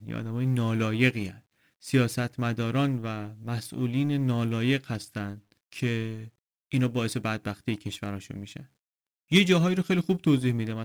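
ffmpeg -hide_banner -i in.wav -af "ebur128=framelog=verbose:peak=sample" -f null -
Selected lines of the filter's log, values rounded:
Integrated loudness:
  I:         -27.4 LUFS
  Threshold: -38.0 LUFS
Loudness range:
  LRA:         4.9 LU
  Threshold: -49.1 LUFS
  LRA low:   -31.8 LUFS
  LRA high:  -26.9 LUFS
Sample peak:
  Peak:       -7.3 dBFS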